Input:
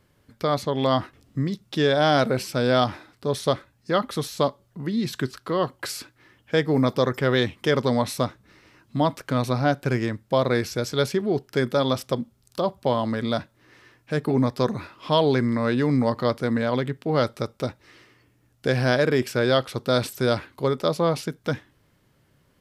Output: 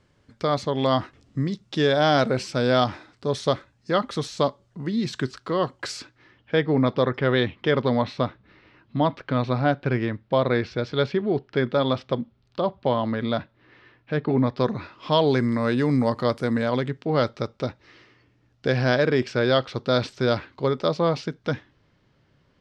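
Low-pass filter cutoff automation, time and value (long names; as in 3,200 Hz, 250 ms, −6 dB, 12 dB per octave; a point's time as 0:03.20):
low-pass filter 24 dB per octave
0:05.94 7,600 Hz
0:06.59 3,900 Hz
0:14.46 3,900 Hz
0:15.58 9,900 Hz
0:16.56 9,900 Hz
0:17.11 5,500 Hz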